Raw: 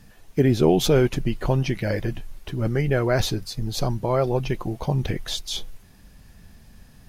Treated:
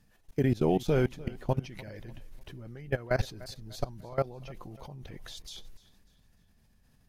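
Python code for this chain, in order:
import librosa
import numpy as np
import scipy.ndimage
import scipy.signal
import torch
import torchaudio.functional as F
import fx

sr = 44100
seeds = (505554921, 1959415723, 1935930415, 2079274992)

p1 = fx.dynamic_eq(x, sr, hz=360.0, q=3.1, threshold_db=-31.0, ratio=4.0, max_db=-3)
p2 = fx.level_steps(p1, sr, step_db=20)
p3 = p2 + fx.echo_feedback(p2, sr, ms=297, feedback_pct=40, wet_db=-20.0, dry=0)
y = F.gain(torch.from_numpy(p3), -4.0).numpy()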